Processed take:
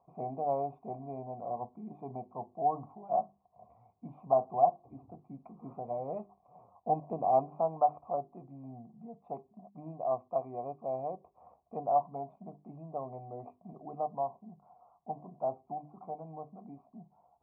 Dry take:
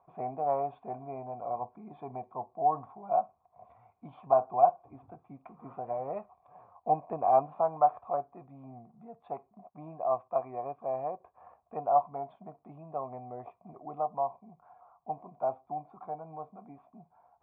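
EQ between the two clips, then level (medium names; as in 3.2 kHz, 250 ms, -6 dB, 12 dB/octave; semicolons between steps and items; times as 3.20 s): boxcar filter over 27 samples; peaking EQ 200 Hz +5 dB 1.1 oct; hum notches 50/100/150/200/250/300/350/400 Hz; 0.0 dB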